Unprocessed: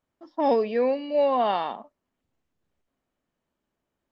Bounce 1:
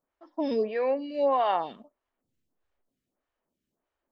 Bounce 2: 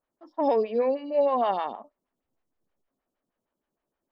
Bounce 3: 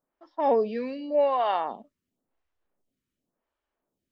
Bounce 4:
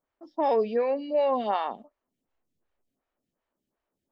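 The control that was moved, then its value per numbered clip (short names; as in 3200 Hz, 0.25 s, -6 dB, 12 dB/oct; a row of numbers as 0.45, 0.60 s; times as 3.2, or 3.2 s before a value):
photocell phaser, rate: 1.6, 6.4, 0.91, 2.7 Hz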